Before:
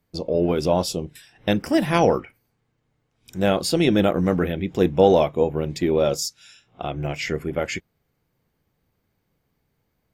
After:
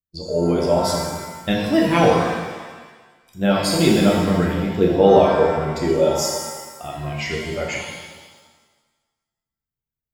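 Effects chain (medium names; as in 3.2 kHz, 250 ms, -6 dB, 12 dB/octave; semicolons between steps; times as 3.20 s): expander on every frequency bin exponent 1.5; pitch-shifted reverb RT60 1.3 s, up +7 st, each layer -8 dB, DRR -2.5 dB; trim +1.5 dB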